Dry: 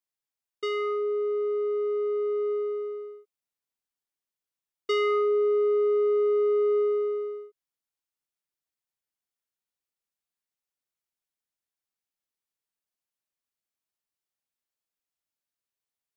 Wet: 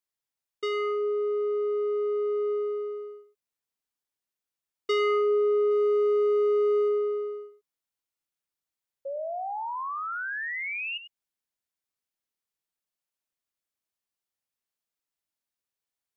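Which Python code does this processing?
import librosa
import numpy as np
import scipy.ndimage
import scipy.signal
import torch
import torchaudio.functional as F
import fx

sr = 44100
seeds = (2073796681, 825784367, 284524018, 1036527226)

y = fx.high_shelf(x, sr, hz=4300.0, db=10.0, at=(5.7, 6.88), fade=0.02)
y = fx.spec_paint(y, sr, seeds[0], shape='rise', start_s=9.05, length_s=1.93, low_hz=540.0, high_hz=2900.0, level_db=-33.0)
y = y + 10.0 ** (-12.0 / 20.0) * np.pad(y, (int(97 * sr / 1000.0), 0))[:len(y)]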